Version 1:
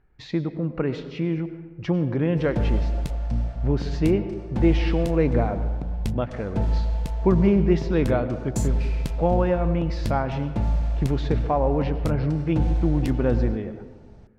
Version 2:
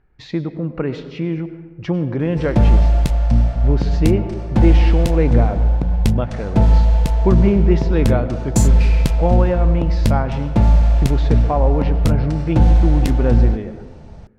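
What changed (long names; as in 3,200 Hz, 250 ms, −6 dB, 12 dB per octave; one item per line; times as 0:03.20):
speech +3.0 dB
background +11.0 dB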